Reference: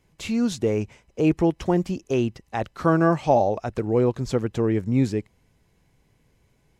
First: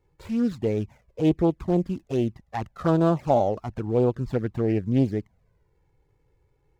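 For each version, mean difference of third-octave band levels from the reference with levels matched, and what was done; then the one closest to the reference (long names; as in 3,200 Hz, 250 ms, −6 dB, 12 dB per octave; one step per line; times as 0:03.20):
3.5 dB: running median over 15 samples
flanger swept by the level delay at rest 2.3 ms, full sweep at −15.5 dBFS
highs frequency-modulated by the lows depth 0.26 ms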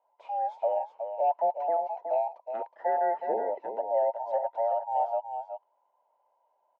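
16.0 dB: frequency inversion band by band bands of 1,000 Hz
four-pole ladder band-pass 690 Hz, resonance 55%
on a send: single-tap delay 368 ms −8 dB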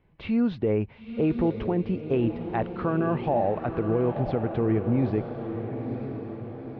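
7.0 dB: Bessel low-pass filter 2,100 Hz, order 8
brickwall limiter −16.5 dBFS, peak gain reduction 9 dB
on a send: feedback delay with all-pass diffusion 940 ms, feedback 54%, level −8 dB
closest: first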